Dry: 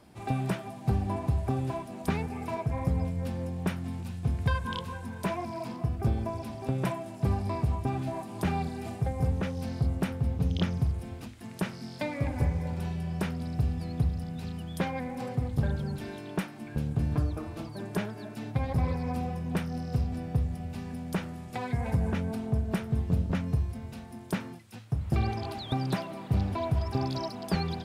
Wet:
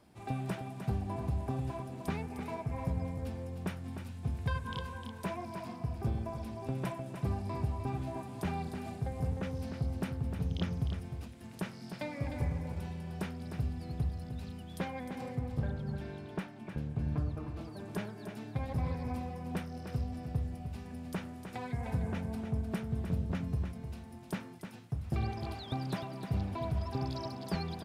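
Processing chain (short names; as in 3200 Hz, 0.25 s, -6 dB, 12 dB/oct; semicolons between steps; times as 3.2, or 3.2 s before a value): 15.39–17.61 high shelf 6000 Hz -11 dB; echo 0.305 s -8 dB; gain -6.5 dB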